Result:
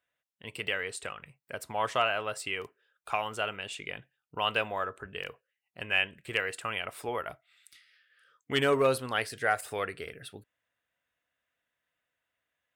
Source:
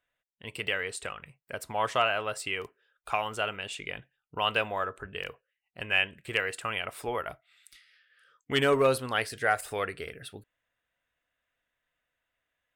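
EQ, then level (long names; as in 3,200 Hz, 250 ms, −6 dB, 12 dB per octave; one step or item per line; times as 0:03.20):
high-pass filter 75 Hz
−1.5 dB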